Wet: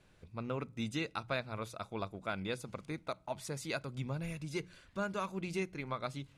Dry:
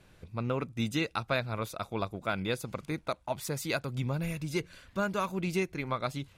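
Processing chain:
low-pass filter 11,000 Hz 24 dB per octave
mains-hum notches 60/120/180 Hz
on a send: convolution reverb RT60 0.50 s, pre-delay 5 ms, DRR 23.5 dB
on the sum: level −6 dB

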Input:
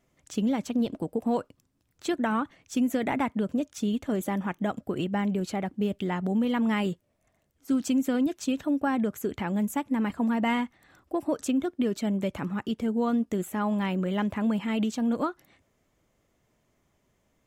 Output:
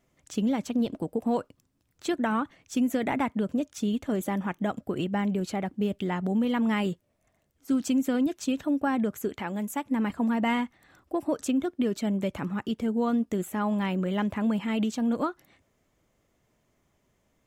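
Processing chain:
0:09.28–0:09.85: low-shelf EQ 210 Hz −10 dB

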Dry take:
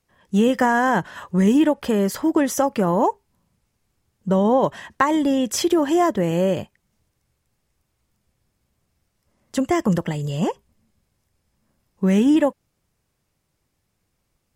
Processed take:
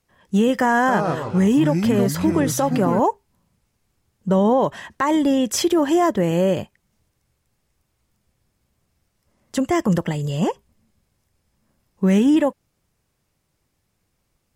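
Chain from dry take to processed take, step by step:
0:00.79–0:03.00: delay with pitch and tempo change per echo 94 ms, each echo −4 semitones, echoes 3, each echo −6 dB
brickwall limiter −11 dBFS, peak gain reduction 7 dB
level +1.5 dB

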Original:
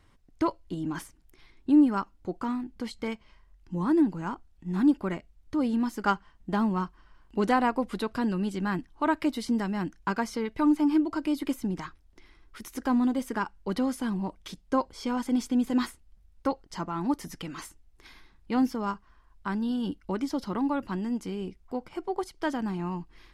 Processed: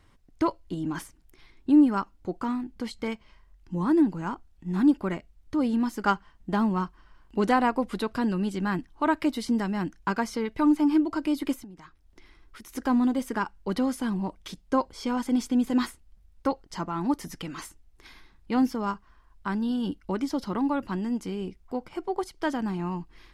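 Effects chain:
0:11.54–0:12.69: downward compressor 8 to 1, threshold −45 dBFS, peak gain reduction 18 dB
level +1.5 dB

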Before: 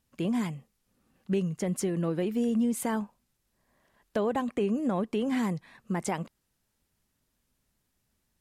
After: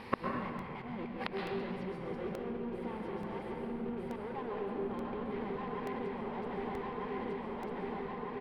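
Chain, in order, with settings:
feedback delay that plays each chunk backwards 625 ms, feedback 66%, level −2 dB
EQ curve with evenly spaced ripples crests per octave 0.9, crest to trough 9 dB
volume swells 271 ms
leveller curve on the samples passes 2
speech leveller within 4 dB
mid-hump overdrive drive 31 dB, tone 7,200 Hz, clips at −11.5 dBFS
hollow resonant body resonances 380/780/3,200 Hz, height 8 dB
gate with flip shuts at −24 dBFS, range −38 dB
high-frequency loss of the air 440 metres
echo with shifted repeats 106 ms, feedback 64%, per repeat −54 Hz, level −13.5 dB
convolution reverb RT60 1.6 s, pre-delay 118 ms, DRR 0.5 dB
regular buffer underruns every 0.88 s, samples 64, repeat, from 0:00.59
level +13 dB

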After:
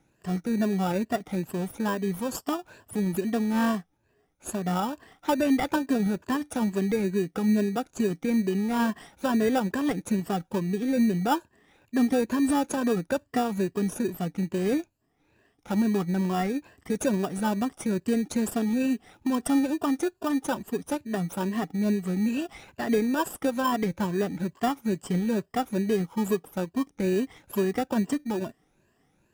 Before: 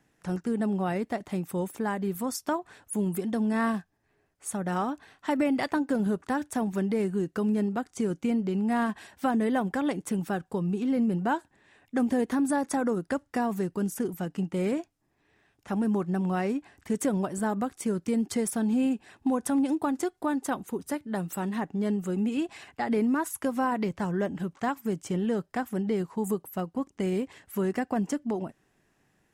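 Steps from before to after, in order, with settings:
rippled gain that drifts along the octave scale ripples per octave 1.4, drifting +2.3 Hz, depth 14 dB
in parallel at −4.5 dB: sample-rate reduction 2,100 Hz, jitter 0%
on the sum: level −3.5 dB

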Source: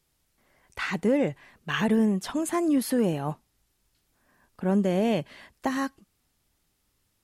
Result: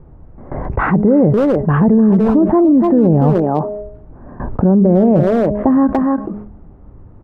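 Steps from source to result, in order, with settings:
Bessel low-pass filter 680 Hz, order 4
noise gate with hold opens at −59 dBFS
low-shelf EQ 170 Hz +6 dB
hum removal 207.6 Hz, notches 3
far-end echo of a speakerphone 290 ms, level −8 dB
boost into a limiter +18 dB
envelope flattener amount 70%
level −4.5 dB

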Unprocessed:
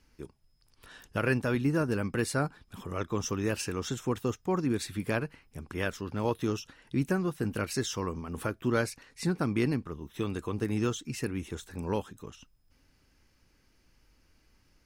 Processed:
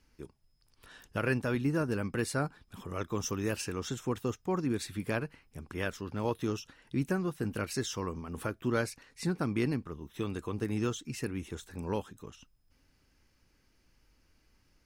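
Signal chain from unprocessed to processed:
0:02.93–0:03.56: high-shelf EQ 9,800 Hz +8.5 dB
level −2.5 dB

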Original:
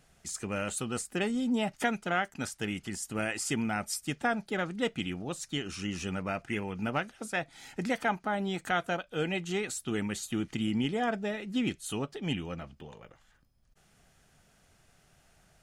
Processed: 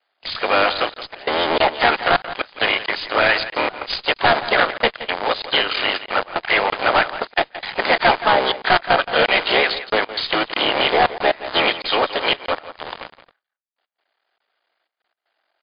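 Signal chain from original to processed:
sub-harmonics by changed cycles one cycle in 3, muted
noise gate with hold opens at −55 dBFS
high-pass filter 550 Hz 24 dB per octave
notch filter 2,600 Hz, Q 12
leveller curve on the samples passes 5
in parallel at −11 dB: asymmetric clip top −25 dBFS, bottom −18 dBFS
on the sum: pitch-shifted copies added −12 semitones −15 dB, −4 semitones −17 dB, +5 semitones −13 dB
gate pattern "xxxxxxx.x." 118 BPM −24 dB
single-tap delay 172 ms −14 dB
regular buffer underruns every 0.64 s, samples 1,024, zero, from 0:00.94
level +6 dB
MP3 48 kbit/s 11,025 Hz

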